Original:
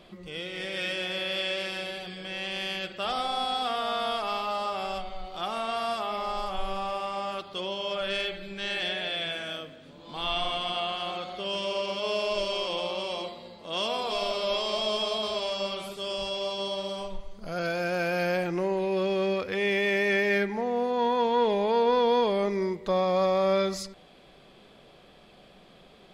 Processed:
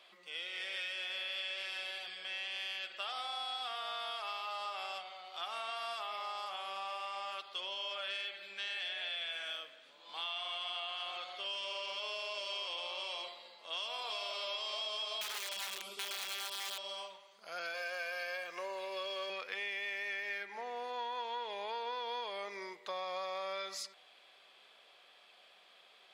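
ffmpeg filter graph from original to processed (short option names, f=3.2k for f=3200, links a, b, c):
-filter_complex "[0:a]asettb=1/sr,asplit=3[a][b][c];[a]atrim=end=15.214[d];[b]atrim=start=15.21:end=16.78,asetpts=PTS-STARTPTS,afade=t=in:d=0.004:c=qsin,afade=t=out:st=1.566:d=0.004:c=qsin,lowshelf=f=440:t=q:w=1.5:g=10,bandreject=f=1.7k:w=6.6,aeval=exprs='(mod(15*val(0)+1,2)-1)/15':c=same[e];[c]atrim=start=16.776[f];[d][e]acrossfade=d=0.004:c1=hsin:c2=qsin[g];[g][f]acrossfade=d=0.004:c1=qsin:c2=hsin,asettb=1/sr,asplit=3[h][i][j];[h]atrim=end=17.744[k];[i]atrim=start=17.74:end=19.3,asetpts=PTS-STARTPTS,afade=t=in:d=0.004:c=qsin,afade=t=out:st=1.556:d=0.004:c=qsin,lowshelf=f=200:g=-9.5,aecho=1:1:1.8:0.86,atrim=end_sample=68796,aeval=exprs='sgn(val(0))*max(abs(val(0))-0.00224,0)':c=same[l];[j]atrim=start=19.296[m];[k][l]acrossfade=d=0.004:c1=hsin:c2=qsin[n];[n][m]acrossfade=d=0.004:c1=qsin:c2=hsin,highpass=860,equalizer=f=2.8k:w=0.86:g=3.5,acompressor=threshold=-31dB:ratio=6,volume=-5.5dB"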